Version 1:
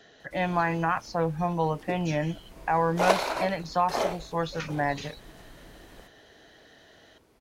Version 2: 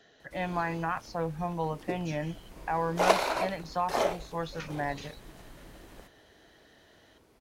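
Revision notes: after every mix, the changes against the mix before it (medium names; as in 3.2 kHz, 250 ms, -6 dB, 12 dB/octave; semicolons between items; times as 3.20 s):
speech -5.5 dB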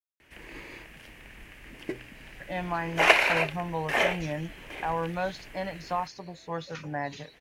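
speech: entry +2.15 s; background: add high-order bell 2.2 kHz +14 dB 1.1 oct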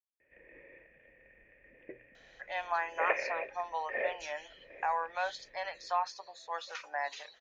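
speech: add high-pass 670 Hz 24 dB/octave; background: add cascade formant filter e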